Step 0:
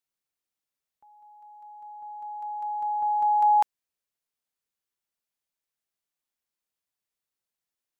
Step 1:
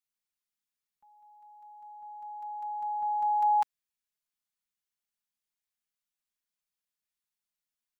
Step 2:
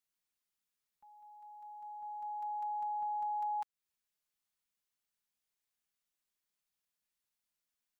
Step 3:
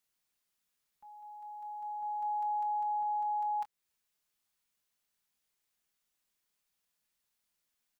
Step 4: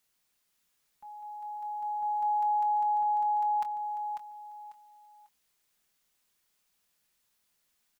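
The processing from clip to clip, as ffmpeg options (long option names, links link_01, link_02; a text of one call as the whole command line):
ffmpeg -i in.wav -af "equalizer=frequency=480:width=0.95:gain=-11.5,aecho=1:1:4.8:0.65,volume=-4dB" out.wav
ffmpeg -i in.wav -af "acompressor=threshold=-37dB:ratio=6,volume=1dB" out.wav
ffmpeg -i in.wav -filter_complex "[0:a]alimiter=level_in=13dB:limit=-24dB:level=0:latency=1:release=129,volume=-13dB,asplit=2[link_01][link_02];[link_02]adelay=24,volume=-11.5dB[link_03];[link_01][link_03]amix=inputs=2:normalize=0,volume=5.5dB" out.wav
ffmpeg -i in.wav -af "aecho=1:1:545|1090|1635:0.422|0.114|0.0307,volume=6.5dB" out.wav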